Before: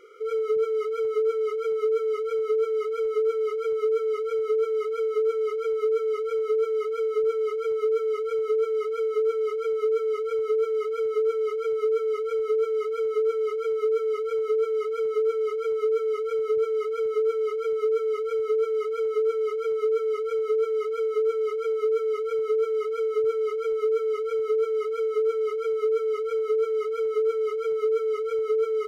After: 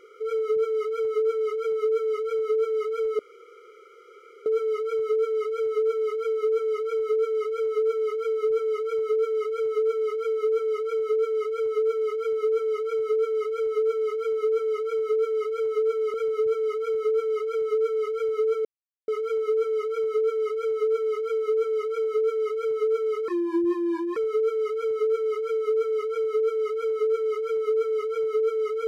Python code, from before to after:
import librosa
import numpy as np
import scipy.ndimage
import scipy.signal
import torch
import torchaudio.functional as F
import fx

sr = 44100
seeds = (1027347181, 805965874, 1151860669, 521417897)

y = fx.edit(x, sr, fx.insert_room_tone(at_s=3.19, length_s=1.27),
    fx.cut(start_s=14.87, length_s=1.38),
    fx.insert_silence(at_s=18.76, length_s=0.43),
    fx.speed_span(start_s=22.96, length_s=0.69, speed=0.78), tone=tone)